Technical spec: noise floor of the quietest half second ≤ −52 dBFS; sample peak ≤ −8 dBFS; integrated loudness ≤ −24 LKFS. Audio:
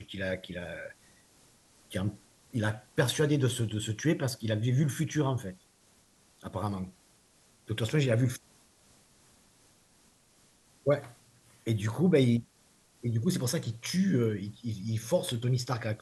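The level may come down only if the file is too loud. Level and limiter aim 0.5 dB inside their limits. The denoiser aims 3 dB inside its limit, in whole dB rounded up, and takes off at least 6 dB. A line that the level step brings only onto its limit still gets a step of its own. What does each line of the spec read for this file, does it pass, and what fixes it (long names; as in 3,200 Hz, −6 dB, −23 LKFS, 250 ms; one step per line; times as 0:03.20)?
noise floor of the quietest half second −64 dBFS: in spec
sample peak −12.5 dBFS: in spec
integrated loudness −31.0 LKFS: in spec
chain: no processing needed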